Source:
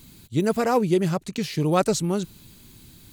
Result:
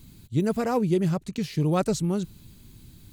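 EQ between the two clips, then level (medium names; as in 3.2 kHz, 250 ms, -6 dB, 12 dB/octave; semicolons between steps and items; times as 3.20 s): bass shelf 220 Hz +10 dB; -6.0 dB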